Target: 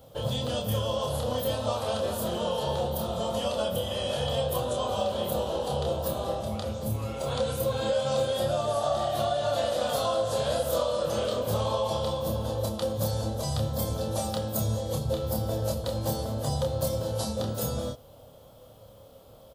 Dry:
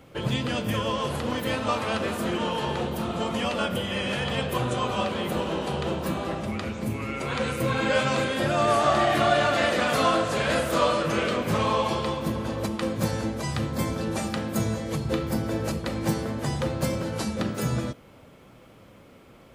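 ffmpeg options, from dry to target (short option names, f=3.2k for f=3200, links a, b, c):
-filter_complex "[0:a]firequalizer=gain_entry='entry(110,0);entry(160,-7);entry(360,-11);entry(530,4);entry(1000,-5);entry(2200,-19);entry(3300,0);entry(7000,-1);entry(15000,9)':delay=0.05:min_phase=1,acompressor=threshold=-25dB:ratio=6,asplit=2[a][b];[b]adelay=28,volume=-4dB[c];[a][c]amix=inputs=2:normalize=0"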